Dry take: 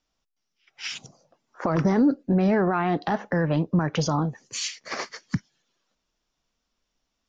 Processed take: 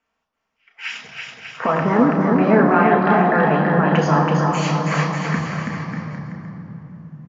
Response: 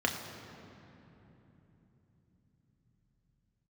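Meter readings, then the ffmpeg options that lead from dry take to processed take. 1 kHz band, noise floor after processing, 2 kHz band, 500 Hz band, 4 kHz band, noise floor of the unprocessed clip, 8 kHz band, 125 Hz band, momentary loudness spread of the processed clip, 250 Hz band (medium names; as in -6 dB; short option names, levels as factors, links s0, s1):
+12.0 dB, -76 dBFS, +11.5 dB, +9.0 dB, +2.0 dB, -80 dBFS, no reading, +7.0 dB, 19 LU, +6.5 dB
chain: -filter_complex "[0:a]equalizer=f=500:t=o:w=1:g=4,equalizer=f=1000:t=o:w=1:g=11,equalizer=f=2000:t=o:w=1:g=7,aecho=1:1:330|594|805.2|974.2|1109:0.631|0.398|0.251|0.158|0.1[s0];[1:a]atrim=start_sample=2205,asetrate=40572,aresample=44100[s1];[s0][s1]afir=irnorm=-1:irlink=0,volume=0.335"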